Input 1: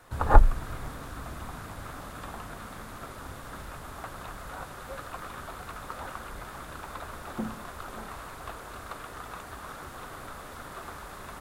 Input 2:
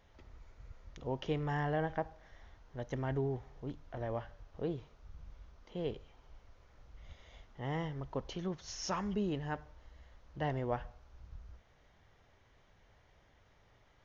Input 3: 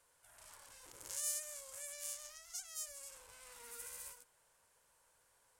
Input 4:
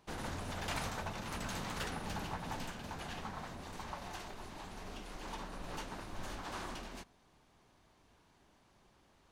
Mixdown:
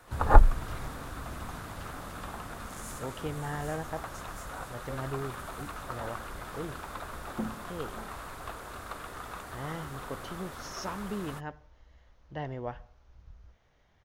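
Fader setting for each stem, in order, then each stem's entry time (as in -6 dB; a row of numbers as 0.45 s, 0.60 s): -0.5 dB, -1.5 dB, -8.0 dB, -12.0 dB; 0.00 s, 1.95 s, 1.60 s, 0.00 s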